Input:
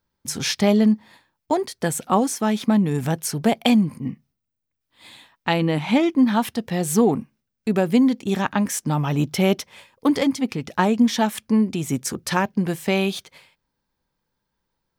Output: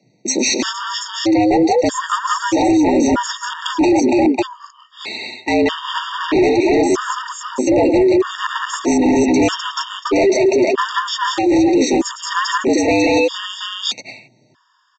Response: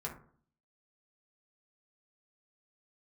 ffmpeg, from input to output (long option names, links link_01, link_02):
-af "afreqshift=110,aecho=1:1:110|179|187|430|464|728:0.133|0.631|0.398|0.126|0.473|0.596,aresample=16000,asoftclip=type=tanh:threshold=-15.5dB,aresample=44100,apsyclip=18.5dB,areverse,acompressor=threshold=-13dB:ratio=20,areverse,afftfilt=real='re*gt(sin(2*PI*0.79*pts/sr)*(1-2*mod(floor(b*sr/1024/930),2)),0)':imag='im*gt(sin(2*PI*0.79*pts/sr)*(1-2*mod(floor(b*sr/1024/930),2)),0)':win_size=1024:overlap=0.75,volume=2.5dB"